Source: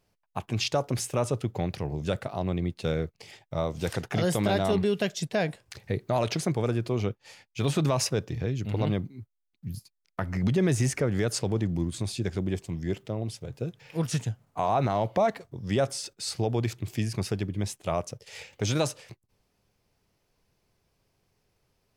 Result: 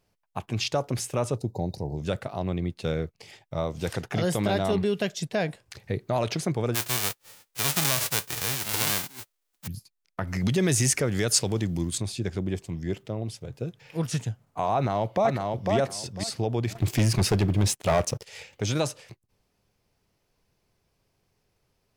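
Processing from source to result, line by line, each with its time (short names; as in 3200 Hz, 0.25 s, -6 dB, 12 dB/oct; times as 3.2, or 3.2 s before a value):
1.38–1.97 spectral gain 970–3700 Hz -20 dB
6.74–9.66 spectral whitening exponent 0.1
10.27–11.98 high shelf 2800 Hz +12 dB
14.74–15.73 echo throw 0.5 s, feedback 20%, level -3 dB
16.75–18.25 sample leveller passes 3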